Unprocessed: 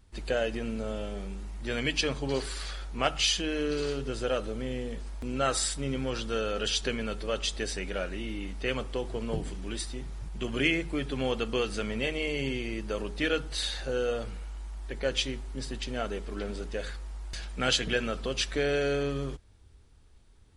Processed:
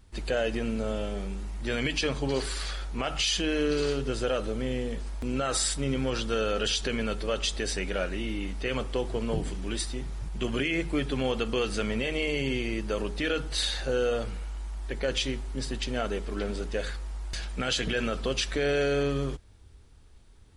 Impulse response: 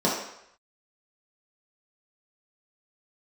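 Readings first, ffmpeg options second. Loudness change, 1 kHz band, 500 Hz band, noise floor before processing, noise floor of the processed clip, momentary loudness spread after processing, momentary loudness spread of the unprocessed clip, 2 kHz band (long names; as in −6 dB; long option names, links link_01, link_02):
+1.5 dB, +0.5 dB, +2.0 dB, −56 dBFS, −52 dBFS, 8 LU, 11 LU, +0.5 dB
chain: -af "alimiter=limit=-21dB:level=0:latency=1:release=35,volume=3.5dB"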